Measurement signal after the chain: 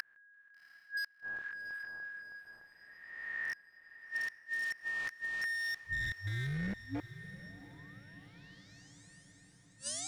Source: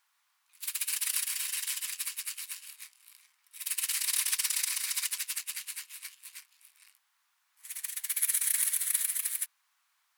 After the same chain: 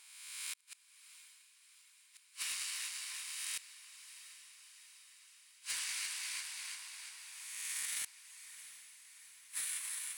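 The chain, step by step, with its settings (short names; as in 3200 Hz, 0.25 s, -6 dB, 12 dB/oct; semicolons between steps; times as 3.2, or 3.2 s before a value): spectral swells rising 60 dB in 1.43 s; polynomial smoothing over 9 samples; split-band echo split 940 Hz, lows 0.613 s, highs 0.342 s, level -4 dB; flipped gate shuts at -22 dBFS, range -40 dB; wavefolder -27 dBFS; compressor 2.5:1, threshold -37 dBFS; diffused feedback echo 0.737 s, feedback 60%, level -13.5 dB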